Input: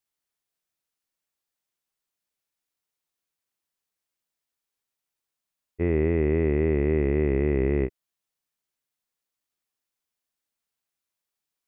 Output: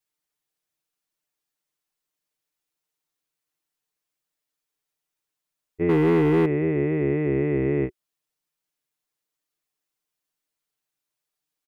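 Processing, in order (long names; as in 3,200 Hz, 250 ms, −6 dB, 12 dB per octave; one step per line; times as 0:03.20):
parametric band 370 Hz +5 dB 0.25 octaves
comb filter 6.6 ms, depth 100%
0:05.89–0:06.46: leveller curve on the samples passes 2
level −2 dB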